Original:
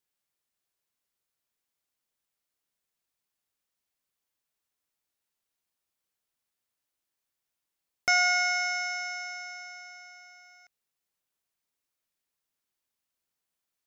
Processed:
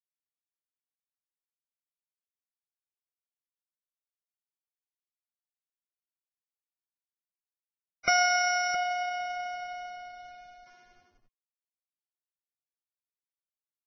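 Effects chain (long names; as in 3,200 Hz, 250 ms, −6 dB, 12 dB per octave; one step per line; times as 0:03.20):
comb filter 5.8 ms, depth 58%
on a send: single-tap delay 665 ms −8.5 dB
on the sum: bad sample-rate conversion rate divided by 4×, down filtered, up hold
in parallel at 0 dB: downward compressor 12 to 1, threshold −38 dBFS, peak gain reduction 17.5 dB
on the sum: slack as between gear wheels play −48 dBFS
Ogg Vorbis 16 kbit/s 16,000 Hz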